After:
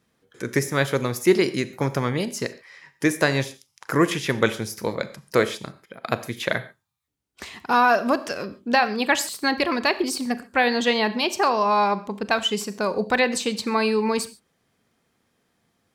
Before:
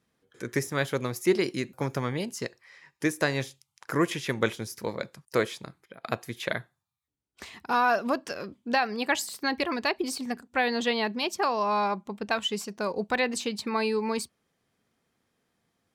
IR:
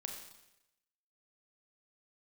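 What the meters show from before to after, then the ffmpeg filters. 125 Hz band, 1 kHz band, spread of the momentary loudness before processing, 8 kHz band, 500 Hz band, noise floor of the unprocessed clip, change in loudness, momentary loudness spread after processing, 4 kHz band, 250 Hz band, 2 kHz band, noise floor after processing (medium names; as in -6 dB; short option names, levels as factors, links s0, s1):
+6.0 dB, +6.0 dB, 11 LU, +6.0 dB, +6.0 dB, -80 dBFS, +6.0 dB, 12 LU, +6.0 dB, +6.0 dB, +6.0 dB, -71 dBFS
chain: -filter_complex "[0:a]asplit=2[s0][s1];[1:a]atrim=start_sample=2205,atrim=end_sample=6615[s2];[s1][s2]afir=irnorm=-1:irlink=0,volume=0.596[s3];[s0][s3]amix=inputs=2:normalize=0,volume=1.41"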